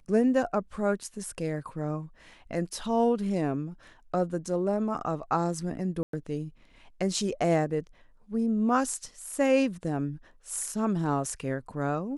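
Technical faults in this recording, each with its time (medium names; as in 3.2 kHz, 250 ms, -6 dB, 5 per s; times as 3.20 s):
6.03–6.13 s: dropout 103 ms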